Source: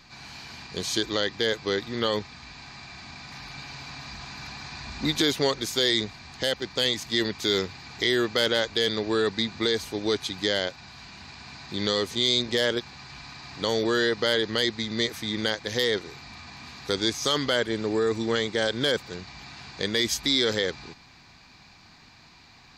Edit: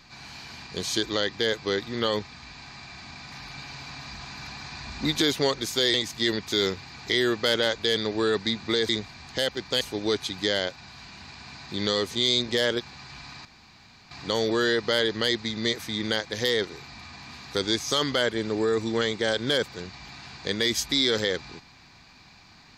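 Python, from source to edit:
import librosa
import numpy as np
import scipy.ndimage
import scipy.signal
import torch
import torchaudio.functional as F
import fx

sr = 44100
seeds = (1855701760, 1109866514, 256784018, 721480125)

y = fx.edit(x, sr, fx.move(start_s=5.94, length_s=0.92, to_s=9.81),
    fx.insert_room_tone(at_s=13.45, length_s=0.66), tone=tone)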